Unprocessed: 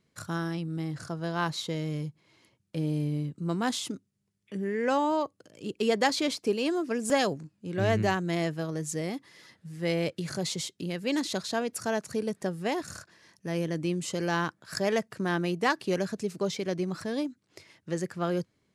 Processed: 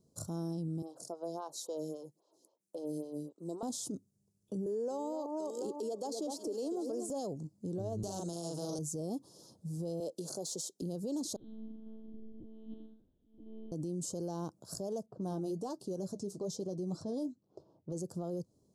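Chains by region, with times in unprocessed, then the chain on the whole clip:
0:00.82–0:03.63: high-pass filter 440 Hz + phaser with staggered stages 3.7 Hz
0:04.66–0:07.09: high-pass filter 270 Hz 24 dB per octave + delay that swaps between a low-pass and a high-pass 245 ms, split 1,400 Hz, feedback 58%, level −9.5 dB + multiband upward and downward compressor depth 40%
0:08.03–0:08.79: loudspeaker in its box 140–9,800 Hz, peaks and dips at 1,100 Hz −8 dB, 1,700 Hz −4 dB, 7,500 Hz −6 dB + double-tracking delay 41 ms −2 dB + every bin compressed towards the loudest bin 2 to 1
0:10.00–0:10.82: de-essing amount 65% + high-pass filter 360 Hz
0:11.36–0:13.72: spectrum smeared in time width 228 ms + formant filter i + one-pitch LPC vocoder at 8 kHz 220 Hz
0:15.06–0:17.92: low-pass that shuts in the quiet parts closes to 710 Hz, open at −26.5 dBFS + flanger 1.2 Hz, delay 4.7 ms, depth 4 ms, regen −59% + one half of a high-frequency compander encoder only
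whole clip: downward compressor 5 to 1, threshold −32 dBFS; Chebyshev band-stop filter 650–6,300 Hz, order 2; brickwall limiter −33.5 dBFS; level +3 dB

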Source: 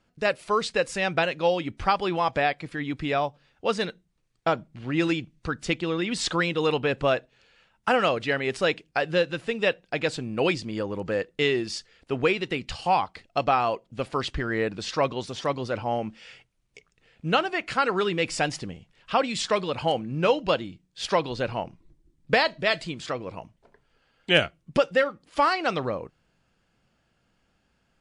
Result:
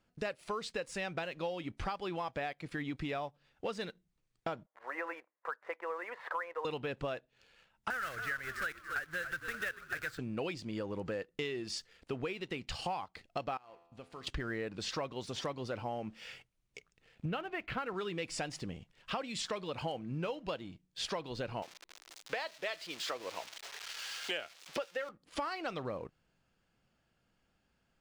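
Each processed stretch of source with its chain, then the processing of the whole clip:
0:04.66–0:06.65: elliptic band-pass filter 510–1,900 Hz, stop band 60 dB + parametric band 990 Hz +7.5 dB 0.4 octaves
0:07.90–0:10.19: one scale factor per block 3 bits + drawn EQ curve 100 Hz 0 dB, 190 Hz −14 dB, 1,000 Hz −12 dB, 1,500 Hz +10 dB, 2,600 Hz −9 dB + echo with shifted repeats 282 ms, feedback 47%, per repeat −56 Hz, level −13 dB
0:13.57–0:14.27: downward compressor 2 to 1, threshold −43 dBFS + tuned comb filter 85 Hz, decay 0.86 s, mix 70%
0:17.25–0:17.94: low-pass filter 3,300 Hz 24 dB per octave + low-shelf EQ 110 Hz +12 dB
0:21.62–0:25.09: spike at every zero crossing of −24 dBFS + three-way crossover with the lows and the highs turned down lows −21 dB, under 350 Hz, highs −22 dB, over 5,700 Hz
whole clip: downward compressor 6 to 1, threshold −34 dBFS; leveller curve on the samples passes 1; level −5 dB

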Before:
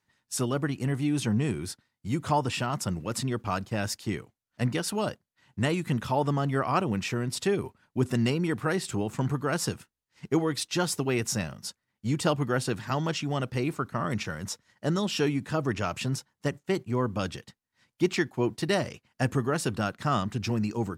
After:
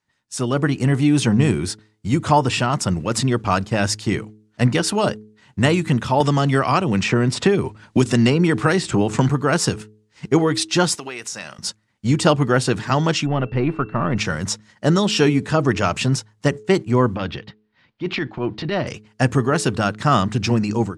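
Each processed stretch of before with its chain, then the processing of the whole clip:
0:06.20–0:09.29: low-pass filter 10,000 Hz + multiband upward and downward compressor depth 100%
0:10.95–0:11.59: high-pass filter 1,200 Hz 6 dB per octave + downward compressor 10 to 1, threshold −36 dBFS
0:13.25–0:14.16: gain on one half-wave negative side −3 dB + steady tone 2,700 Hz −55 dBFS + high-frequency loss of the air 400 metres
0:17.15–0:18.87: low-pass filter 4,000 Hz 24 dB per octave + transient designer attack −11 dB, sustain +1 dB + downward compressor 1.5 to 1, threshold −38 dBFS
whole clip: automatic gain control gain up to 11.5 dB; low-pass filter 9,500 Hz 24 dB per octave; hum removal 106.8 Hz, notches 4

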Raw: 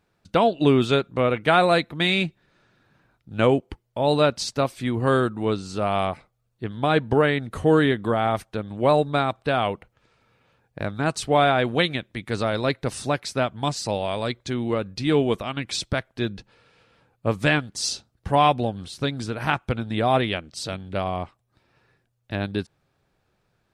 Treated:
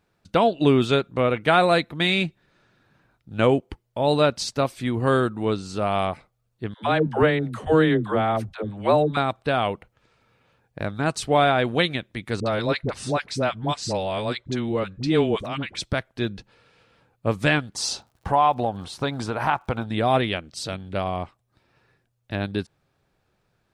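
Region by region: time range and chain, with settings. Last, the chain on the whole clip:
0:06.74–0:09.17: high-shelf EQ 5,700 Hz −7 dB + all-pass dispersion lows, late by 102 ms, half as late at 400 Hz
0:12.40–0:15.80: low-pass filter 8,400 Hz + all-pass dispersion highs, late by 59 ms, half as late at 600 Hz
0:17.74–0:19.85: parametric band 890 Hz +12.5 dB 1.3 octaves + downward compressor 2 to 1, threshold −22 dBFS + surface crackle 93 per second −50 dBFS
whole clip: no processing

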